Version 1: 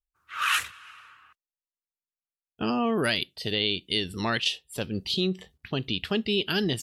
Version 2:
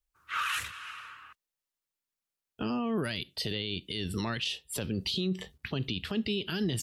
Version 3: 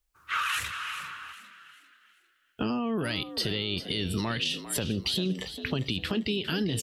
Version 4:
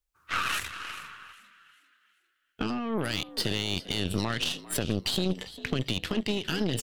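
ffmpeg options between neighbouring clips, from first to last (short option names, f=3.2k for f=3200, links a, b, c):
-filter_complex "[0:a]equalizer=f=740:t=o:w=0.2:g=-3.5,acrossover=split=200[a][b];[b]acompressor=threshold=-30dB:ratio=6[c];[a][c]amix=inputs=2:normalize=0,alimiter=level_in=3.5dB:limit=-24dB:level=0:latency=1:release=41,volume=-3.5dB,volume=5dB"
-filter_complex "[0:a]acompressor=threshold=-32dB:ratio=6,asplit=2[a][b];[b]asplit=4[c][d][e][f];[c]adelay=399,afreqshift=66,volume=-12dB[g];[d]adelay=798,afreqshift=132,volume=-20.4dB[h];[e]adelay=1197,afreqshift=198,volume=-28.8dB[i];[f]adelay=1596,afreqshift=264,volume=-37.2dB[j];[g][h][i][j]amix=inputs=4:normalize=0[k];[a][k]amix=inputs=2:normalize=0,volume=6.5dB"
-af "aeval=exprs='0.15*(cos(1*acos(clip(val(0)/0.15,-1,1)))-cos(1*PI/2))+0.0211*(cos(4*acos(clip(val(0)/0.15,-1,1)))-cos(4*PI/2))+0.0106*(cos(7*acos(clip(val(0)/0.15,-1,1)))-cos(7*PI/2))':c=same"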